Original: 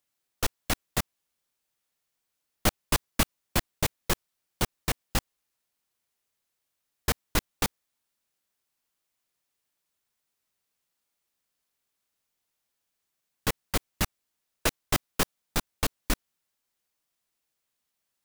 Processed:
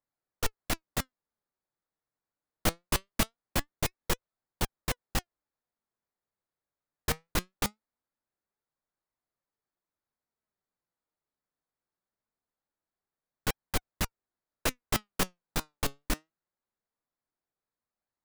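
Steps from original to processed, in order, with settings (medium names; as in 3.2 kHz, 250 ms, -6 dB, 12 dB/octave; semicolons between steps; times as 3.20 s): local Wiener filter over 15 samples; flange 0.22 Hz, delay 0.9 ms, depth 6.3 ms, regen +79%; trim +1.5 dB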